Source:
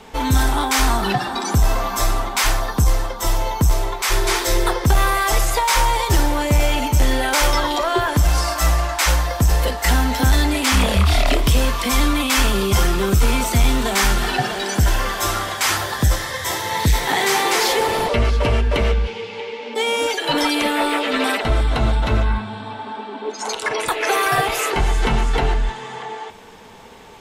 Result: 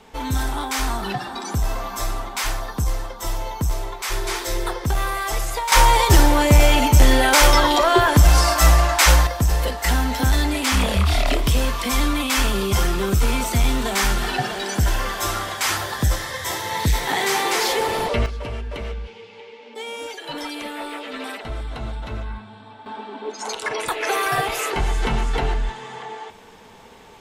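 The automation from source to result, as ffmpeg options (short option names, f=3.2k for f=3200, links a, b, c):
-af "asetnsamples=n=441:p=0,asendcmd='5.72 volume volume 3.5dB;9.27 volume volume -3dB;18.26 volume volume -12dB;22.86 volume volume -3.5dB',volume=-6.5dB"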